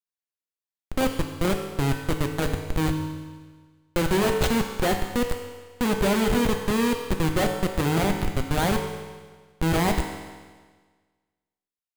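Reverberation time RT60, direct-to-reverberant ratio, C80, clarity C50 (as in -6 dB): 1.5 s, 3.0 dB, 7.0 dB, 6.0 dB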